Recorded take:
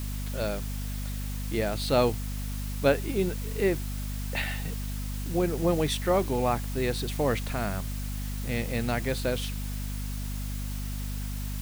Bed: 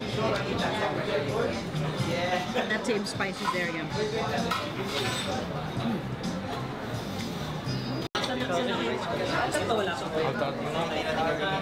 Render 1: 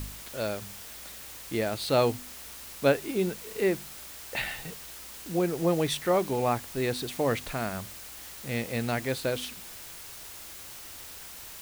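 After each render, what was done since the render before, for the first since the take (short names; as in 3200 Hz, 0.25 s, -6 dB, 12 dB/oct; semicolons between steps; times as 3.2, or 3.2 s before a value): de-hum 50 Hz, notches 5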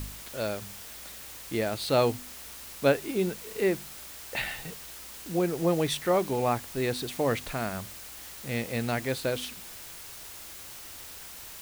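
nothing audible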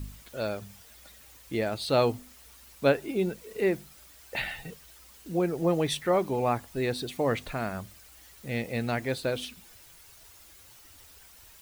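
denoiser 11 dB, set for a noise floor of -44 dBFS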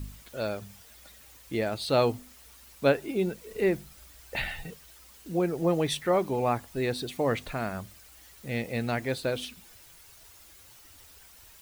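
3.45–4.66 low shelf 84 Hz +11 dB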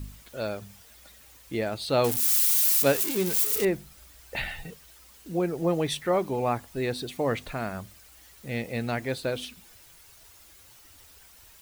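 2.04–3.65 switching spikes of -18.5 dBFS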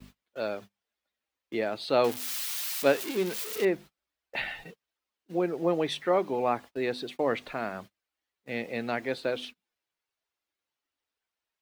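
gate -40 dBFS, range -30 dB; three-band isolator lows -17 dB, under 200 Hz, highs -13 dB, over 4700 Hz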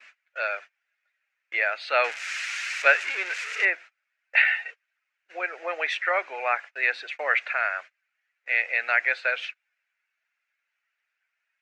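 elliptic band-pass 600–6900 Hz, stop band 70 dB; band shelf 1900 Hz +15.5 dB 1.2 oct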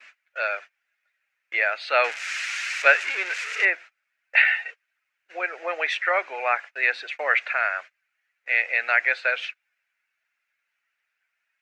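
gain +2 dB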